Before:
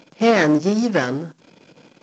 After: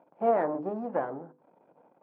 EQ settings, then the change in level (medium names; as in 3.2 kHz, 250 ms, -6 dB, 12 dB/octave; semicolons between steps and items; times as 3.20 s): four-pole ladder low-pass 960 Hz, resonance 45%; tilt EQ +4 dB/octave; hum notches 50/100/150/200/250/300/350/400/450/500 Hz; 0.0 dB